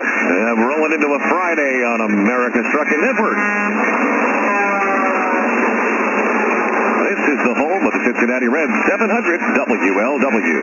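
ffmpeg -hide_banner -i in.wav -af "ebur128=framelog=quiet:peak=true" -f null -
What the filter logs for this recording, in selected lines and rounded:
Integrated loudness:
  I:         -15.4 LUFS
  Threshold: -25.4 LUFS
Loudness range:
  LRA:         0.3 LU
  Threshold: -35.4 LUFS
  LRA low:   -15.6 LUFS
  LRA high:  -15.3 LUFS
True peak:
  Peak:       -1.6 dBFS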